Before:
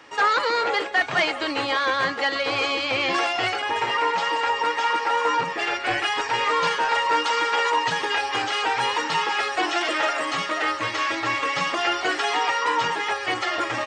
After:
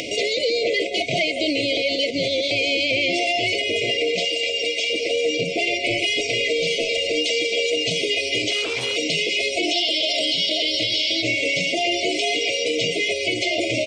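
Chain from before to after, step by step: FFT band-reject 720–2000 Hz; 1.77–2.51 s: reverse; 4.25–4.90 s: bass shelf 460 Hz -11.5 dB; 9.73–11.22 s: time-frequency box 2.8–5.6 kHz +12 dB; peak limiter -20.5 dBFS, peak gain reduction 11 dB; upward compressor, threshold -25 dBFS; 8.51–8.96 s: transformer saturation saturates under 1.5 kHz; trim +7 dB

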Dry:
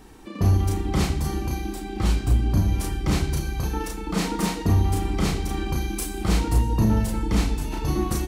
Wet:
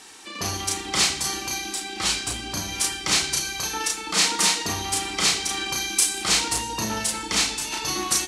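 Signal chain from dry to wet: frequency weighting ITU-R 468; trim +3 dB

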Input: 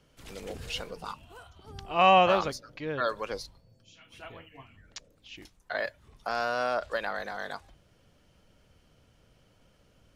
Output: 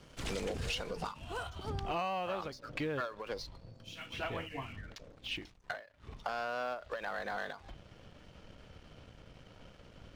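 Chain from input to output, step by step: low-pass 8.6 kHz 12 dB/octave, from 1.70 s 4.4 kHz; compression 16:1, threshold -42 dBFS, peak gain reduction 26.5 dB; waveshaping leveller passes 2; endings held to a fixed fall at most 150 dB/s; trim +2.5 dB

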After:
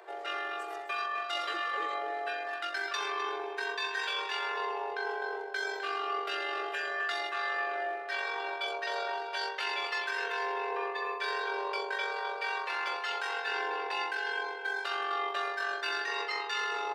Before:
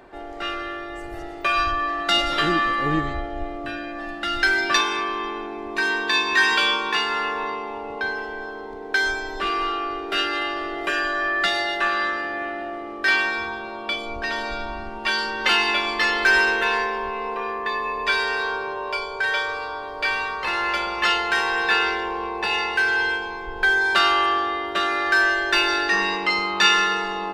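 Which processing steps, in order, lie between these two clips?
steep high-pass 380 Hz 72 dB/octave; reverse; compression 10:1, threshold -28 dBFS, peak gain reduction 16 dB; reverse; echo from a far wall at 71 m, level -6 dB; granular stretch 0.62×, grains 43 ms; trim -2 dB

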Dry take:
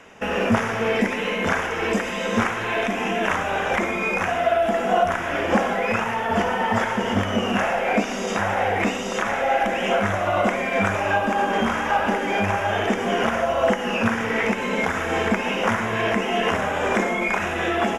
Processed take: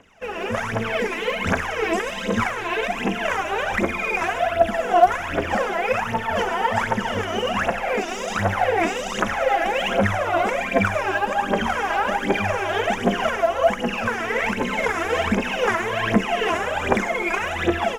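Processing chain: level rider; phaser 1.3 Hz, delay 3.1 ms, feedback 78%; trim -11 dB

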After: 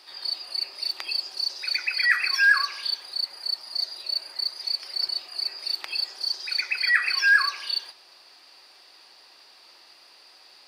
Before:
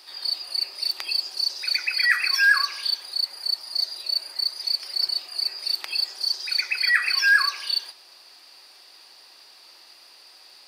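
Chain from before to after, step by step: treble shelf 6.4 kHz -9 dB

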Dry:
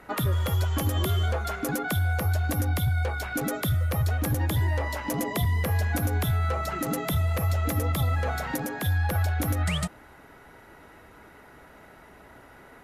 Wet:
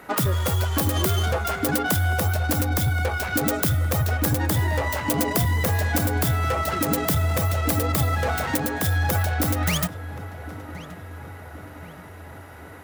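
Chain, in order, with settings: tracing distortion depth 0.4 ms; high-pass 110 Hz 6 dB/octave; treble shelf 8.9 kHz +7 dB; filtered feedback delay 1075 ms, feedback 61%, low-pass 2.1 kHz, level -14 dB; trim +5.5 dB

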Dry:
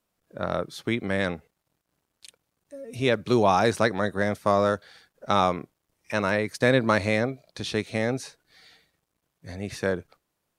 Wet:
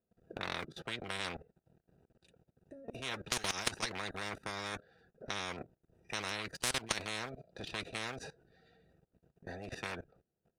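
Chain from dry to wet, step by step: local Wiener filter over 41 samples; comb of notches 290 Hz; level held to a coarse grid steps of 21 dB; bass shelf 220 Hz -4 dB; spectrum-flattening compressor 10:1; trim -1 dB

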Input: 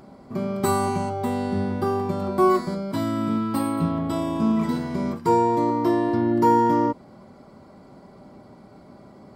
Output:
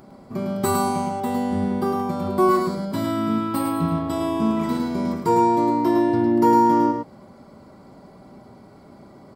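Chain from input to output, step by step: treble shelf 11 kHz +6.5 dB; on a send: delay 106 ms -5 dB

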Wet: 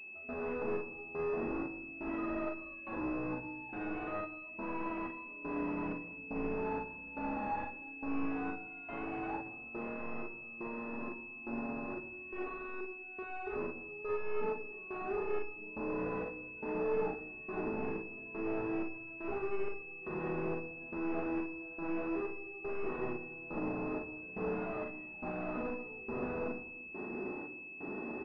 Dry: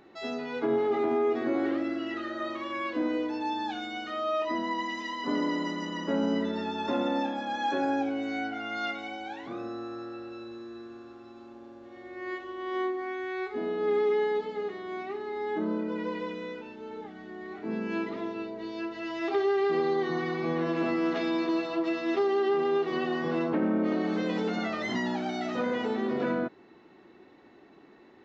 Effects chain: compression, threshold -38 dBFS, peak gain reduction 14 dB; peak limiter -38.5 dBFS, peak gain reduction 10 dB; trance gate "...xxxxx." 157 bpm -24 dB; sine folder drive 6 dB, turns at -38.5 dBFS; on a send: early reflections 39 ms -3.5 dB, 55 ms -7.5 dB; on the sum: simulated room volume 3900 m³, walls furnished, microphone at 1.4 m; class-D stage that switches slowly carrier 2.6 kHz; trim +2 dB

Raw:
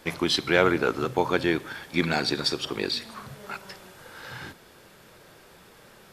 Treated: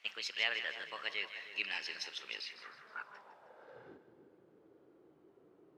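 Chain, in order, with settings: gliding tape speed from 131% -> 81%; two-band feedback delay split 960 Hz, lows 311 ms, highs 156 ms, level -10.5 dB; band-pass sweep 2.6 kHz -> 350 Hz, 2.42–4.07 s; trim -5.5 dB

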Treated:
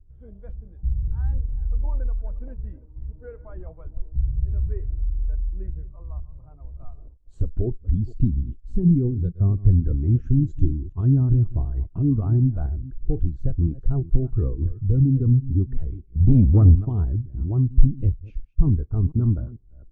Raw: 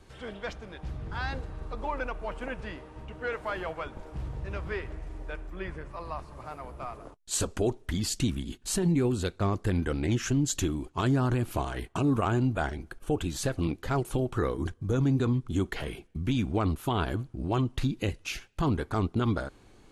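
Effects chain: chunks repeated in reverse 239 ms, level -12 dB; tilt EQ -4.5 dB/octave; 16.20–16.85 s: waveshaping leveller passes 2; spectral contrast expander 1.5:1; trim -1 dB

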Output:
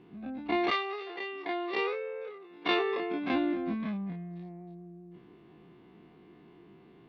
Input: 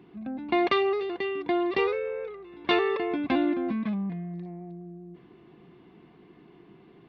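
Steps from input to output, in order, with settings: every event in the spectrogram widened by 60 ms; 0.70–3.32 s: high-pass 670 Hz -> 170 Hz 12 dB/octave; trim -6 dB

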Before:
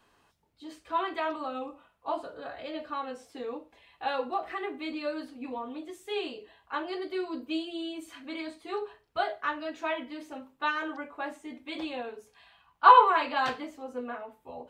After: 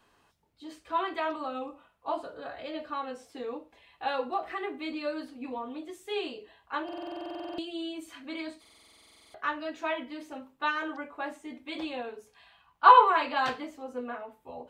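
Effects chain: buffer glitch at 6.84/8.60 s, samples 2048, times 15

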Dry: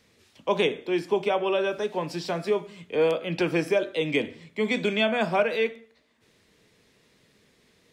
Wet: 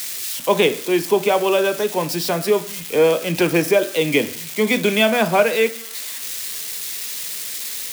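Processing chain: zero-crossing glitches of -26.5 dBFS; trim +7.5 dB

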